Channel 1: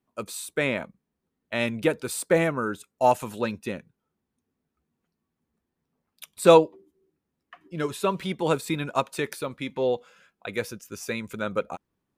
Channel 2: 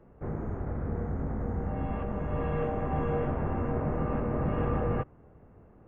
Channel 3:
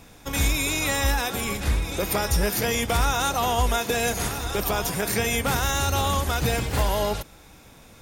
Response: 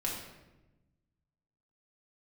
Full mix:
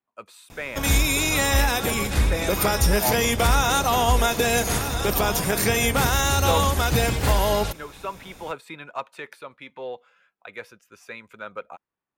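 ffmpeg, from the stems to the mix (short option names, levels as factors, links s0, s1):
-filter_complex "[0:a]acrossover=split=580 3300:gain=0.224 1 0.224[s0][s1][s2];[s0][s1][s2]amix=inputs=3:normalize=0,asoftclip=type=tanh:threshold=0.2,volume=0.708[s3];[1:a]adelay=1050,volume=0.473[s4];[2:a]adelay=500,volume=1.41[s5];[s3][s4][s5]amix=inputs=3:normalize=0"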